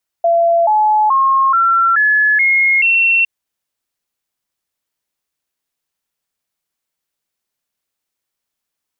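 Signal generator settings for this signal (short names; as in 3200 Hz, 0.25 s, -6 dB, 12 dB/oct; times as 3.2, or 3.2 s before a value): stepped sine 678 Hz up, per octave 3, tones 7, 0.43 s, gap 0.00 s -9 dBFS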